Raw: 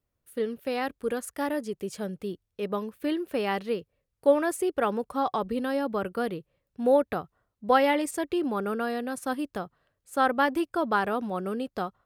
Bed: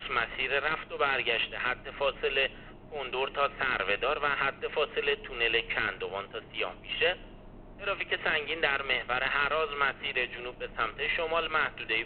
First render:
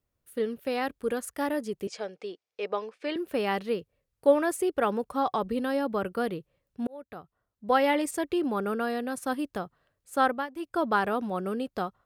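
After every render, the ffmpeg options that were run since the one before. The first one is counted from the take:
-filter_complex "[0:a]asettb=1/sr,asplit=3[s0][s1][s2];[s0]atrim=end=1.874[s3];[s1]atrim=start=1.87:end=3.16,asetpts=PTS-STARTPTS,afade=t=in:d=0.004:c=qsin,afade=t=out:st=1.286:d=0.004:c=qsin,highpass=460,equalizer=f=470:t=q:w=4:g=5,equalizer=f=740:t=q:w=4:g=5,equalizer=f=2300:t=q:w=4:g=6,equalizer=f=5000:t=q:w=4:g=4,lowpass=f=6900:w=0.5412,lowpass=f=6900:w=1.3066[s4];[s2]atrim=start=3.156[s5];[s3][s4]acrossfade=d=0.004:c1=hsin:c2=qsin[s6];[s6][s5]acrossfade=d=0.004:c1=qsin:c2=hsin,asplit=4[s7][s8][s9][s10];[s7]atrim=end=6.87,asetpts=PTS-STARTPTS,afade=t=out:st=6.866:d=0.004:c=hsin[s11];[s8]atrim=start=6.87:end=10.48,asetpts=PTS-STARTPTS,afade=t=in:d=1.13,afade=t=out:st=3.37:d=0.24:silence=0.158489[s12];[s9]atrim=start=10.48:end=10.54,asetpts=PTS-STARTPTS,volume=0.158[s13];[s10]atrim=start=10.54,asetpts=PTS-STARTPTS,afade=t=in:d=0.24:silence=0.158489[s14];[s11][s12][s13][s14]concat=n=4:v=0:a=1"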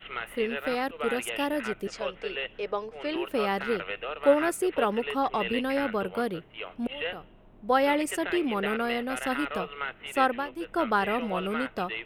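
-filter_complex "[1:a]volume=0.501[s0];[0:a][s0]amix=inputs=2:normalize=0"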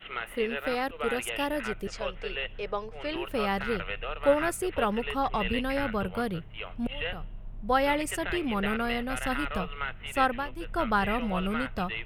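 -af "asubboost=boost=8.5:cutoff=110"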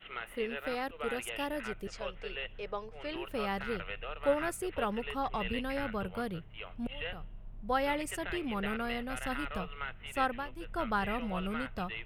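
-af "volume=0.501"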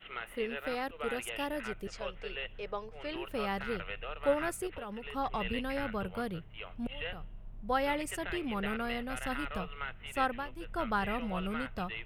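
-filter_complex "[0:a]asettb=1/sr,asplit=3[s0][s1][s2];[s0]atrim=end=4.674[s3];[s1]atrim=start=4.67:end=5.14,asetpts=PTS-STARTPTS,afade=t=in:d=0.004:c=qsin,afade=t=out:st=0.466:d=0.004:c=qsin,acompressor=threshold=0.0126:ratio=6:attack=3.2:release=140:knee=1:detection=peak[s4];[s2]atrim=start=5.136[s5];[s3][s4]acrossfade=d=0.004:c1=hsin:c2=qsin[s6];[s6][s5]acrossfade=d=0.004:c1=qsin:c2=hsin"

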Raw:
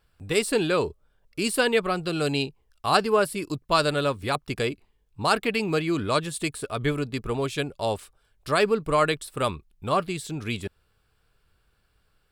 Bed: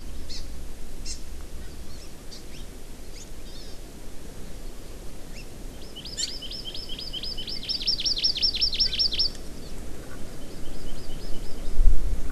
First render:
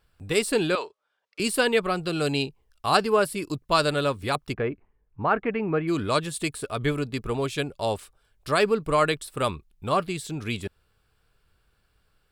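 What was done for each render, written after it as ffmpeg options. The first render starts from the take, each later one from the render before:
-filter_complex "[0:a]asettb=1/sr,asplit=3[s0][s1][s2];[s0]atrim=end=0.754[s3];[s1]atrim=start=0.75:end=1.4,asetpts=PTS-STARTPTS,afade=t=in:d=0.004:c=qsin,afade=t=out:st=0.646:d=0.004:c=qsin,highpass=770,lowpass=5600[s4];[s2]atrim=start=1.396[s5];[s3][s4]acrossfade=d=0.004:c1=hsin:c2=qsin[s6];[s6][s5]acrossfade=d=0.004:c1=qsin:c2=hsin,asplit=3[s7][s8][s9];[s7]afade=t=out:st=4.52:d=0.02[s10];[s8]lowpass=f=2000:w=0.5412,lowpass=f=2000:w=1.3066,afade=t=in:st=4.52:d=0.02,afade=t=out:st=5.87:d=0.02[s11];[s9]afade=t=in:st=5.87:d=0.02[s12];[s10][s11][s12]amix=inputs=3:normalize=0"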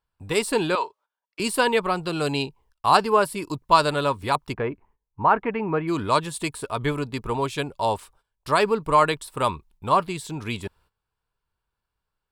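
-af "agate=range=0.158:threshold=0.00158:ratio=16:detection=peak,equalizer=f=950:t=o:w=0.36:g=12.5"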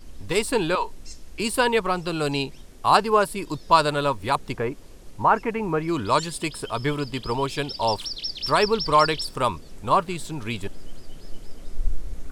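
-filter_complex "[1:a]volume=0.447[s0];[0:a][s0]amix=inputs=2:normalize=0"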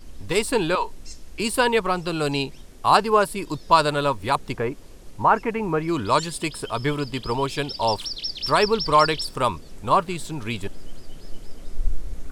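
-af "volume=1.12,alimiter=limit=0.708:level=0:latency=1"

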